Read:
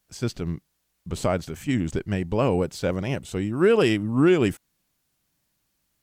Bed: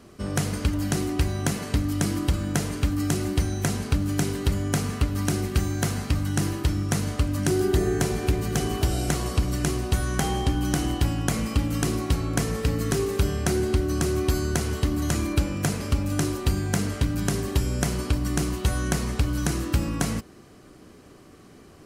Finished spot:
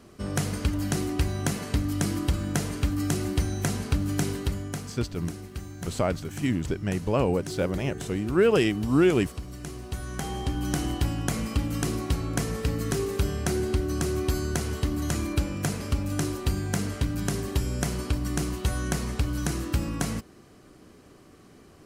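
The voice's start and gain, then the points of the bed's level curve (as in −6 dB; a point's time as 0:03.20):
4.75 s, −2.0 dB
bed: 0:04.32 −2 dB
0:05.01 −13.5 dB
0:09.57 −13.5 dB
0:10.74 −3 dB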